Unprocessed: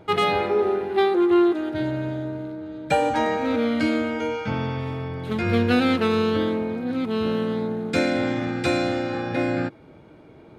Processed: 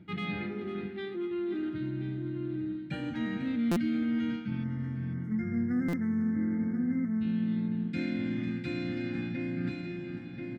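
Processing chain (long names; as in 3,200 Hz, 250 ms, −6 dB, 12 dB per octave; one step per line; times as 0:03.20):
high-pass filter 81 Hz 12 dB per octave
bass and treble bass +14 dB, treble −6 dB
comb filter 5.7 ms, depth 45%
single-tap delay 1,033 ms −15 dB
time-frequency box erased 0:04.64–0:07.22, 2,200–5,100 Hz
repeating echo 498 ms, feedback 25%, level −15 dB
reversed playback
downward compressor 6 to 1, threshold −24 dBFS, peak gain reduction 14.5 dB
reversed playback
octave-band graphic EQ 125/250/500/1,000/2,000/4,000/8,000 Hz −3/+11/−10/−8/+7/+4/−4 dB
buffer that repeats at 0:03.71/0:05.88, samples 256, times 8
level −9 dB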